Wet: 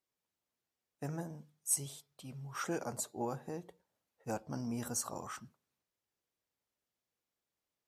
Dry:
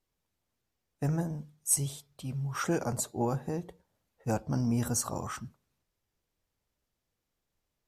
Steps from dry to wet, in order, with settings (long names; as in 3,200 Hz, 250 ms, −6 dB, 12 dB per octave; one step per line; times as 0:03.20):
high-pass filter 100 Hz 6 dB per octave
low-shelf EQ 160 Hz −9 dB
level −5.5 dB